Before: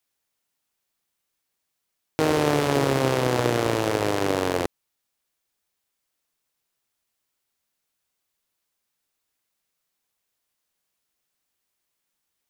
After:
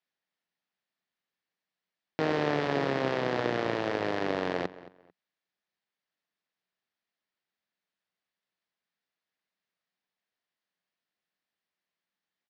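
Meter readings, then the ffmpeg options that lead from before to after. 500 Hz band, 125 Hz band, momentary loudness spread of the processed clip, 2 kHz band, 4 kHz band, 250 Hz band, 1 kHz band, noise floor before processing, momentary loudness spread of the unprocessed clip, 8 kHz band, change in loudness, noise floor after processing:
-6.5 dB, -10.5 dB, 5 LU, -4.0 dB, -8.0 dB, -7.0 dB, -6.0 dB, -80 dBFS, 5 LU, under -15 dB, -6.5 dB, under -85 dBFS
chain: -filter_complex "[0:a]highpass=120,equalizer=f=130:t=q:w=4:g=-4,equalizer=f=180:t=q:w=4:g=8,equalizer=f=670:t=q:w=4:g=3,equalizer=f=1800:t=q:w=4:g=6,lowpass=f=4800:w=0.5412,lowpass=f=4800:w=1.3066,asplit=2[s0][s1];[s1]adelay=222,lowpass=f=3100:p=1,volume=0.141,asplit=2[s2][s3];[s3]adelay=222,lowpass=f=3100:p=1,volume=0.25[s4];[s0][s2][s4]amix=inputs=3:normalize=0,volume=0.422"

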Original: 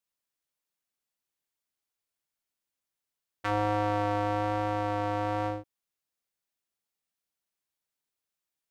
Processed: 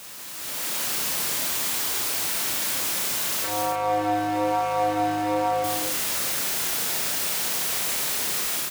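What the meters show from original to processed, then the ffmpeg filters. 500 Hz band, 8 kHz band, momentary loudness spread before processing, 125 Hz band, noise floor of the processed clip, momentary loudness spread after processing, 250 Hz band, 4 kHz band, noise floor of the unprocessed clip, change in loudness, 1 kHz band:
+5.5 dB, no reading, 6 LU, -3.5 dB, -34 dBFS, 2 LU, +5.0 dB, +22.5 dB, under -85 dBFS, +6.5 dB, +7.0 dB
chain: -filter_complex "[0:a]aeval=exprs='val(0)+0.5*0.0188*sgn(val(0))':c=same,highpass=f=87:w=0.5412,highpass=f=87:w=1.3066,bandreject=f=60:t=h:w=6,bandreject=f=120:t=h:w=6,acompressor=threshold=0.0224:ratio=6,alimiter=level_in=2.51:limit=0.0631:level=0:latency=1:release=289,volume=0.398,dynaudnorm=f=330:g=3:m=4.22,asplit=2[s0][s1];[s1]adelay=33,volume=0.631[s2];[s0][s2]amix=inputs=2:normalize=0,asplit=2[s3][s4];[s4]aecho=0:1:186.6|279.9:0.631|0.447[s5];[s3][s5]amix=inputs=2:normalize=0"

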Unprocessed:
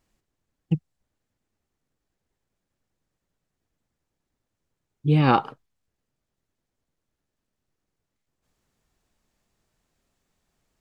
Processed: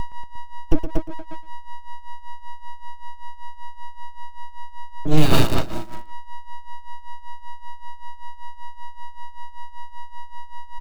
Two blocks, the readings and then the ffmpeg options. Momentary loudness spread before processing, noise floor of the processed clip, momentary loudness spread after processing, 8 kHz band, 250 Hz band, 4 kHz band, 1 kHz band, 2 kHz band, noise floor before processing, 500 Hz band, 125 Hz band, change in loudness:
10 LU, -34 dBFS, 17 LU, no reading, +2.5 dB, +10.0 dB, 0.0 dB, +3.0 dB, -83 dBFS, +4.5 dB, +0.5 dB, -8.0 dB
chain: -filter_complex "[0:a]agate=range=0.0447:threshold=0.00631:ratio=16:detection=peak,acrossover=split=170|3000[s0][s1][s2];[s1]acompressor=threshold=0.1:ratio=4[s3];[s0][s3][s2]amix=inputs=3:normalize=0,aeval=exprs='val(0)+0.0224*sin(2*PI*480*n/s)':c=same,asplit=2[s4][s5];[s5]asoftclip=type=tanh:threshold=0.0891,volume=0.631[s6];[s4][s6]amix=inputs=2:normalize=0,lowpass=f=4200:t=q:w=4.2,aecho=1:1:118|236|354|472|590|708:0.668|0.321|0.154|0.0739|0.0355|0.017,acrossover=split=1100[s7][s8];[s7]aeval=exprs='abs(val(0))':c=same[s9];[s8]acrusher=bits=5:dc=4:mix=0:aa=0.000001[s10];[s9][s10]amix=inputs=2:normalize=0,equalizer=f=740:t=o:w=2.8:g=-3,tremolo=f=5.2:d=0.81,lowshelf=f=400:g=9,alimiter=level_in=2.66:limit=0.891:release=50:level=0:latency=1,volume=0.891"

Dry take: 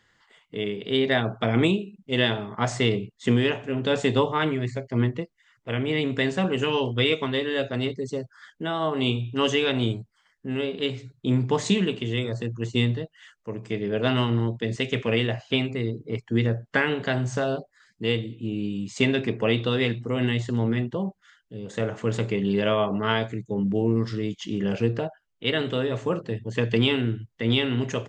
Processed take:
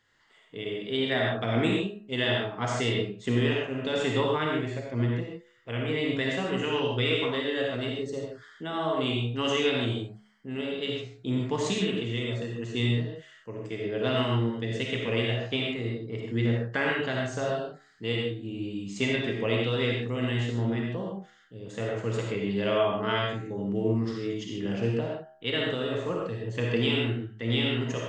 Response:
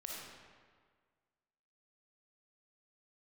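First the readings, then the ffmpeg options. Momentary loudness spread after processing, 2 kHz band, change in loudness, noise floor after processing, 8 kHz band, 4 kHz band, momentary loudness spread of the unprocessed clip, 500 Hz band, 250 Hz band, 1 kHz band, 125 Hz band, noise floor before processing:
9 LU, -2.5 dB, -3.5 dB, -59 dBFS, -3.0 dB, -2.5 dB, 9 LU, -3.0 dB, -4.5 dB, -3.0 dB, -3.5 dB, -70 dBFS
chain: -filter_complex "[0:a]equalizer=f=200:w=6.9:g=-5,bandreject=f=70.73:t=h:w=4,bandreject=f=141.46:t=h:w=4,bandreject=f=212.19:t=h:w=4,bandreject=f=282.92:t=h:w=4,bandreject=f=353.65:t=h:w=4,bandreject=f=424.38:t=h:w=4,bandreject=f=495.11:t=h:w=4,bandreject=f=565.84:t=h:w=4,bandreject=f=636.57:t=h:w=4,bandreject=f=707.3:t=h:w=4,bandreject=f=778.03:t=h:w=4,bandreject=f=848.76:t=h:w=4,bandreject=f=919.49:t=h:w=4,bandreject=f=990.22:t=h:w=4,bandreject=f=1060.95:t=h:w=4,bandreject=f=1131.68:t=h:w=4,bandreject=f=1202.41:t=h:w=4,bandreject=f=1273.14:t=h:w=4,bandreject=f=1343.87:t=h:w=4,bandreject=f=1414.6:t=h:w=4,bandreject=f=1485.33:t=h:w=4,bandreject=f=1556.06:t=h:w=4,bandreject=f=1626.79:t=h:w=4,bandreject=f=1697.52:t=h:w=4,bandreject=f=1768.25:t=h:w=4,bandreject=f=1838.98:t=h:w=4,bandreject=f=1909.71:t=h:w=4[s0];[1:a]atrim=start_sample=2205,afade=t=out:st=0.21:d=0.01,atrim=end_sample=9702[s1];[s0][s1]afir=irnorm=-1:irlink=0"

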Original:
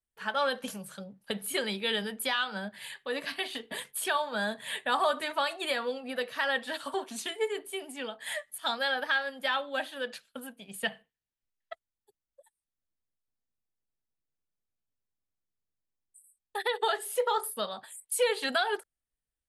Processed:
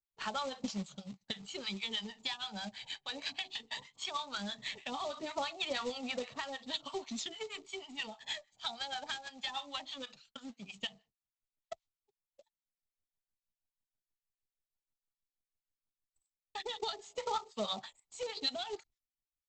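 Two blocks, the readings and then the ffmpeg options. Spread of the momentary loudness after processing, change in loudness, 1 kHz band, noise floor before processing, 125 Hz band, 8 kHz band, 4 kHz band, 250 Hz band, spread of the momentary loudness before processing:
9 LU, -8.0 dB, -9.0 dB, under -85 dBFS, no reading, -10.0 dB, -4.0 dB, -4.0 dB, 12 LU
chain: -filter_complex "[0:a]agate=range=0.224:threshold=0.00126:ratio=16:detection=peak,equalizer=f=460:t=o:w=2.7:g=-6.5,acrossover=split=750[s0][s1];[s0]aeval=exprs='val(0)*(1-1/2+1/2*cos(2*PI*6.3*n/s))':c=same[s2];[s1]aeval=exprs='val(0)*(1-1/2-1/2*cos(2*PI*6.3*n/s))':c=same[s3];[s2][s3]amix=inputs=2:normalize=0,acompressor=threshold=0.01:ratio=8,aphaser=in_gain=1:out_gain=1:delay=1.3:decay=0.48:speed=0.17:type=sinusoidal,aresample=16000,acrusher=bits=3:mode=log:mix=0:aa=0.000001,aresample=44100,equalizer=f=500:t=o:w=0.33:g=-4,equalizer=f=800:t=o:w=0.33:g=3,equalizer=f=1600:t=o:w=0.33:g=-12,equalizer=f=4000:t=o:w=0.33:g=4,volume=1.68"

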